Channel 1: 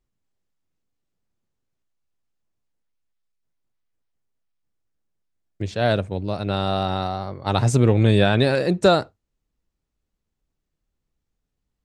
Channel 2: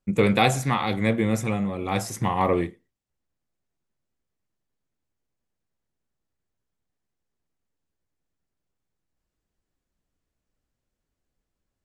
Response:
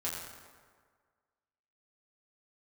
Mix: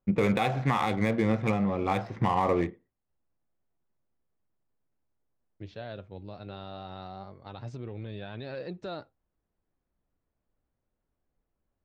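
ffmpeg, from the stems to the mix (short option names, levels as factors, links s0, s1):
-filter_complex "[0:a]alimiter=limit=0.2:level=0:latency=1:release=215,flanger=delay=0.9:depth=7.8:regen=77:speed=0.24:shape=triangular,lowpass=f=4700:w=0.5412,lowpass=f=4700:w=1.3066,volume=0.299[s0];[1:a]lowpass=f=4100:w=0.5412,lowpass=f=4100:w=1.3066,equalizer=f=840:t=o:w=1.7:g=3.5,adynamicsmooth=sensitivity=6:basefreq=2100,volume=0.944[s1];[s0][s1]amix=inputs=2:normalize=0,alimiter=limit=0.178:level=0:latency=1:release=154"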